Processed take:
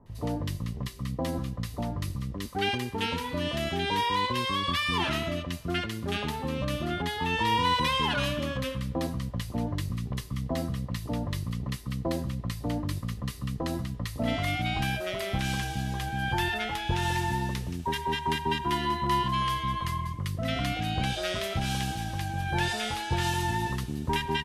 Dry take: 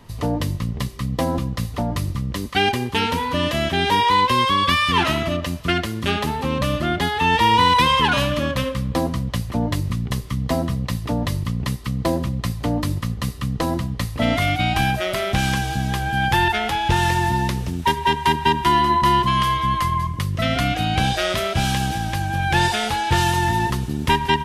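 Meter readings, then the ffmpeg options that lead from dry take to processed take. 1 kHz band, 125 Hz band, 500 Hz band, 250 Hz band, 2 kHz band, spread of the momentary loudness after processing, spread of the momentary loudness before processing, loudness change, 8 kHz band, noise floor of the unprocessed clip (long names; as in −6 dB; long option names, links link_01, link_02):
−11.0 dB, −8.5 dB, −9.0 dB, −8.5 dB, −9.5 dB, 7 LU, 9 LU, −9.5 dB, −8.5 dB, −30 dBFS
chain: -filter_complex "[0:a]acrossover=split=1100[link_01][link_02];[link_02]adelay=60[link_03];[link_01][link_03]amix=inputs=2:normalize=0,volume=-8.5dB"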